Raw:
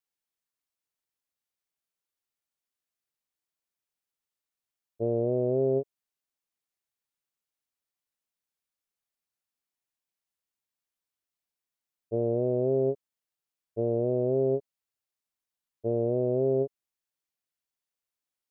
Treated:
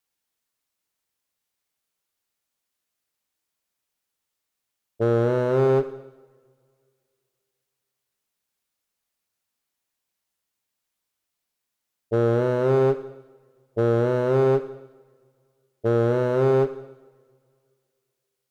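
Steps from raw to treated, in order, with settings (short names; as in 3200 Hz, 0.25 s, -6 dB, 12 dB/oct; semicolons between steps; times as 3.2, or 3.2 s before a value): one-sided clip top -30 dBFS, bottom -21 dBFS; two-slope reverb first 0.93 s, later 2.6 s, from -22 dB, DRR 9.5 dB; gain +8 dB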